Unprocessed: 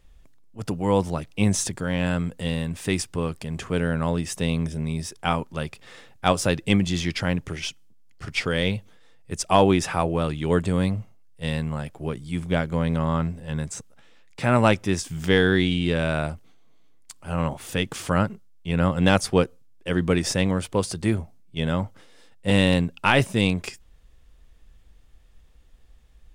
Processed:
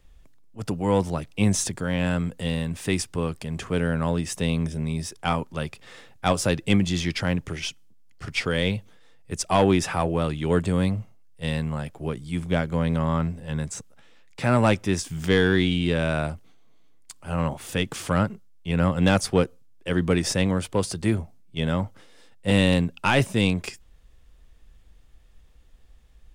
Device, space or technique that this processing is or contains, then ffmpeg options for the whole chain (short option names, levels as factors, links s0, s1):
one-band saturation: -filter_complex "[0:a]acrossover=split=270|4600[s0][s1][s2];[s1]asoftclip=type=tanh:threshold=0.237[s3];[s0][s3][s2]amix=inputs=3:normalize=0"